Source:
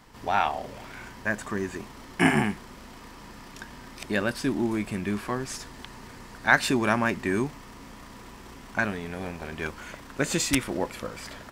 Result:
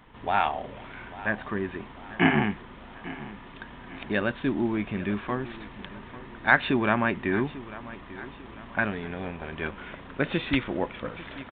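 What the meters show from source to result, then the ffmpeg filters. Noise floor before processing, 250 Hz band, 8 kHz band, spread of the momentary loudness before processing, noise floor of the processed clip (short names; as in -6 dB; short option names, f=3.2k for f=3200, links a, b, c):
-46 dBFS, 0.0 dB, under -40 dB, 23 LU, -46 dBFS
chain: -af "aresample=8000,aresample=44100,aecho=1:1:845|1690|2535|3380:0.141|0.0664|0.0312|0.0147"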